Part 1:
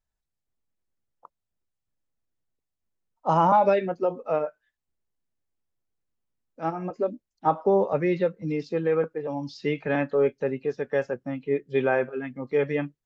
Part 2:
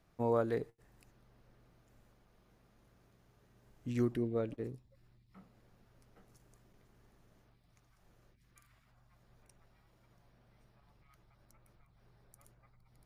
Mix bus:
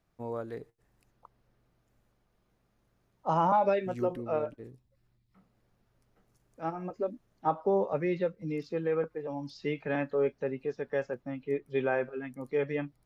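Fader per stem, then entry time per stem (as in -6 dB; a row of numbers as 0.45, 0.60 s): -6.0, -5.5 dB; 0.00, 0.00 s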